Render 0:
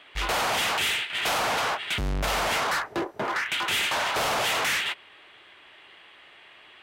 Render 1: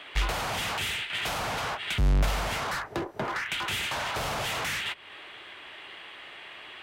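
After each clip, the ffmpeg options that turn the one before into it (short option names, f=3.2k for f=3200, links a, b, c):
-filter_complex "[0:a]acrossover=split=160[a][b];[b]acompressor=threshold=-37dB:ratio=5[c];[a][c]amix=inputs=2:normalize=0,volume=6.5dB"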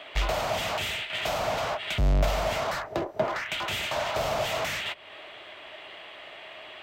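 -af "equalizer=f=630:t=o:w=0.33:g=12,equalizer=f=1.6k:t=o:w=0.33:g=-3,equalizer=f=10k:t=o:w=0.33:g=-9"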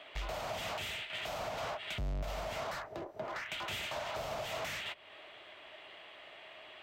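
-af "alimiter=limit=-21dB:level=0:latency=1:release=166,volume=-8.5dB"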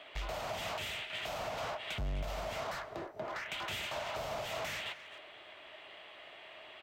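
-filter_complex "[0:a]asplit=2[a][b];[b]adelay=260,highpass=300,lowpass=3.4k,asoftclip=type=hard:threshold=-39dB,volume=-10dB[c];[a][c]amix=inputs=2:normalize=0"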